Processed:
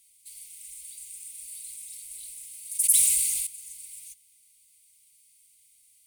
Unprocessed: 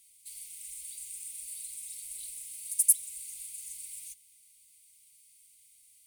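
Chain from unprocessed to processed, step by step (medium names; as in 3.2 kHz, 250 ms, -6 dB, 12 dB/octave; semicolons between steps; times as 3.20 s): 1.37–3.47 s: decay stretcher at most 24 dB/s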